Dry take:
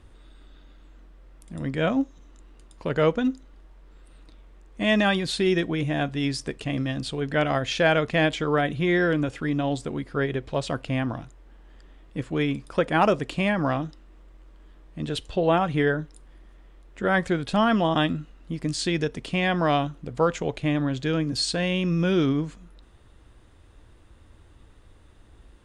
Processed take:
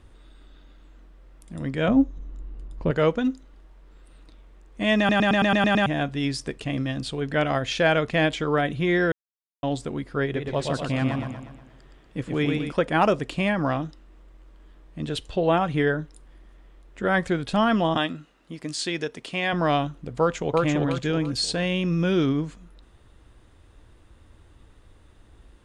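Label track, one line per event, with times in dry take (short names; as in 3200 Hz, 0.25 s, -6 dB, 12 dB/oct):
1.880000	2.910000	tilt -3 dB/oct
4.980000	4.980000	stutter in place 0.11 s, 8 plays
9.120000	9.630000	mute
10.240000	12.720000	warbling echo 0.12 s, feedback 48%, depth 74 cents, level -4 dB
17.970000	19.530000	HPF 400 Hz 6 dB/oct
20.190000	20.640000	echo throw 0.34 s, feedback 35%, level -1 dB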